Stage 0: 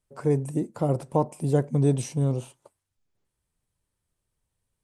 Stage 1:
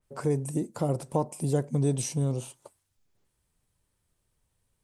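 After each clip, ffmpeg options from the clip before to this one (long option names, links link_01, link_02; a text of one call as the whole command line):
ffmpeg -i in.wav -af "acompressor=threshold=-42dB:ratio=1.5,adynamicequalizer=threshold=0.00112:dfrequency=3500:dqfactor=0.7:tfrequency=3500:tqfactor=0.7:attack=5:release=100:ratio=0.375:range=3.5:mode=boostabove:tftype=highshelf,volume=4.5dB" out.wav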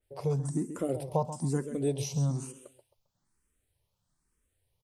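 ffmpeg -i in.wav -filter_complex "[0:a]asplit=2[link_01][link_02];[link_02]aecho=0:1:133|266|399:0.266|0.0798|0.0239[link_03];[link_01][link_03]amix=inputs=2:normalize=0,asplit=2[link_04][link_05];[link_05]afreqshift=1.1[link_06];[link_04][link_06]amix=inputs=2:normalize=1" out.wav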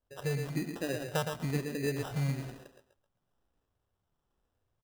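ffmpeg -i in.wav -af "aecho=1:1:115:0.473,acrusher=samples=20:mix=1:aa=0.000001,volume=-3.5dB" out.wav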